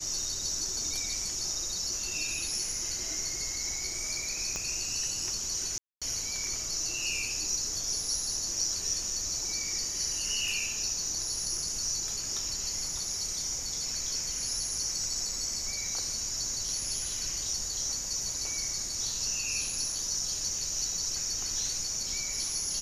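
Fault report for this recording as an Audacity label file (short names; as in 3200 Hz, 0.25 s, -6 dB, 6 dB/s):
4.560000	4.560000	pop -20 dBFS
5.780000	6.020000	gap 0.236 s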